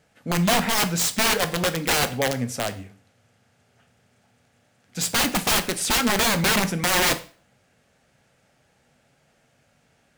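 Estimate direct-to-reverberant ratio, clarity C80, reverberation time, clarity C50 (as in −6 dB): 9.0 dB, 20.5 dB, 0.40 s, 15.5 dB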